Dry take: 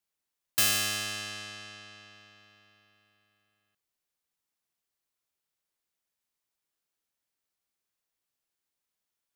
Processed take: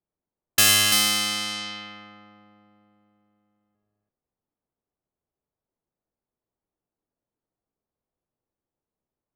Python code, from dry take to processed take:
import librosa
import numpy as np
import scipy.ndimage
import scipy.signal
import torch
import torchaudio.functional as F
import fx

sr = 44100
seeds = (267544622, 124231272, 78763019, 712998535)

y = fx.echo_multitap(x, sr, ms=(52, 80, 104, 105, 283, 341), db=(-18.0, -14.0, -12.0, -12.5, -16.5, -5.5))
y = fx.env_lowpass(y, sr, base_hz=600.0, full_db=-34.0)
y = y * librosa.db_to_amplitude(8.5)